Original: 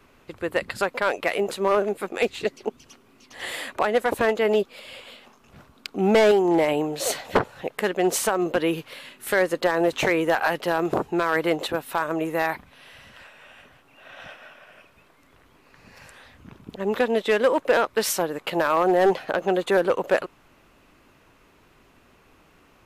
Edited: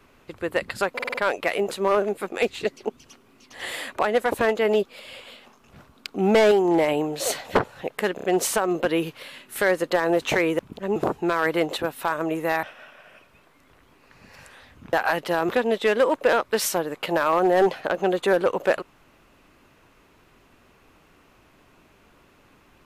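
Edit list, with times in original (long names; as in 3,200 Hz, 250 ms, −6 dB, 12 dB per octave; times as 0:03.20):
0:00.94: stutter 0.05 s, 5 plays
0:07.95: stutter 0.03 s, 4 plays
0:10.30–0:10.86: swap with 0:16.56–0:16.93
0:12.53–0:14.26: remove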